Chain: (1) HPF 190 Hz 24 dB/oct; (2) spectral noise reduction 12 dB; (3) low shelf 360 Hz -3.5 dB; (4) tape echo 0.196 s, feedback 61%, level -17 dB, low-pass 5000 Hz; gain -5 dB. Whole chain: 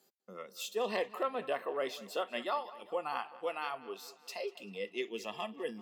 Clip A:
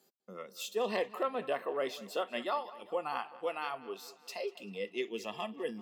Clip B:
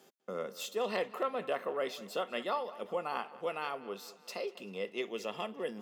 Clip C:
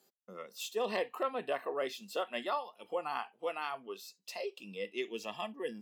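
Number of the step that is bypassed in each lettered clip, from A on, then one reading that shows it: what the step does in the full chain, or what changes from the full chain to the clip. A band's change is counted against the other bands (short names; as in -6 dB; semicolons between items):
3, 250 Hz band +2.0 dB; 2, momentary loudness spread change -3 LU; 4, echo-to-direct -25.0 dB to none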